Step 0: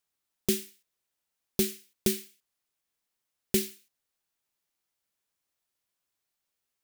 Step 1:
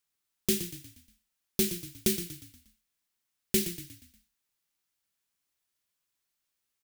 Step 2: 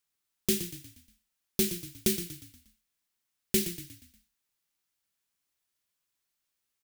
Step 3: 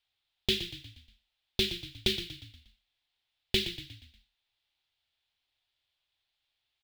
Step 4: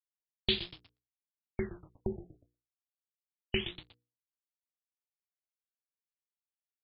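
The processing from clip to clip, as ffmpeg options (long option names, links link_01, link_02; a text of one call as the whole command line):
ffmpeg -i in.wav -filter_complex "[0:a]equalizer=frequency=640:width_type=o:width=1.4:gain=-5.5,bandreject=frequency=50:width_type=h:width=6,bandreject=frequency=100:width_type=h:width=6,bandreject=frequency=150:width_type=h:width=6,bandreject=frequency=200:width_type=h:width=6,bandreject=frequency=250:width_type=h:width=6,bandreject=frequency=300:width_type=h:width=6,bandreject=frequency=350:width_type=h:width=6,bandreject=frequency=400:width_type=h:width=6,bandreject=frequency=450:width_type=h:width=6,bandreject=frequency=500:width_type=h:width=6,asplit=2[link_01][link_02];[link_02]asplit=5[link_03][link_04][link_05][link_06][link_07];[link_03]adelay=119,afreqshift=-33,volume=-11dB[link_08];[link_04]adelay=238,afreqshift=-66,volume=-17.9dB[link_09];[link_05]adelay=357,afreqshift=-99,volume=-24.9dB[link_10];[link_06]adelay=476,afreqshift=-132,volume=-31.8dB[link_11];[link_07]adelay=595,afreqshift=-165,volume=-38.7dB[link_12];[link_08][link_09][link_10][link_11][link_12]amix=inputs=5:normalize=0[link_13];[link_01][link_13]amix=inputs=2:normalize=0,volume=1dB" out.wav
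ffmpeg -i in.wav -af anull out.wav
ffmpeg -i in.wav -af "firequalizer=gain_entry='entry(110,0);entry(160,-15);entry(320,-9);entry(470,-8);entry(760,0);entry(1100,-8);entry(3500,6);entry(6000,-16);entry(9700,-23)':delay=0.05:min_phase=1,volume=6dB" out.wav
ffmpeg -i in.wav -af "aeval=exprs='sgn(val(0))*max(abs(val(0))-0.00708,0)':channel_layout=same,bandreject=frequency=60:width_type=h:width=6,bandreject=frequency=120:width_type=h:width=6,bandreject=frequency=180:width_type=h:width=6,bandreject=frequency=240:width_type=h:width=6,bandreject=frequency=300:width_type=h:width=6,bandreject=frequency=360:width_type=h:width=6,bandreject=frequency=420:width_type=h:width=6,bandreject=frequency=480:width_type=h:width=6,afftfilt=real='re*lt(b*sr/1024,710*pow(5500/710,0.5+0.5*sin(2*PI*0.3*pts/sr)))':imag='im*lt(b*sr/1024,710*pow(5500/710,0.5+0.5*sin(2*PI*0.3*pts/sr)))':win_size=1024:overlap=0.75" out.wav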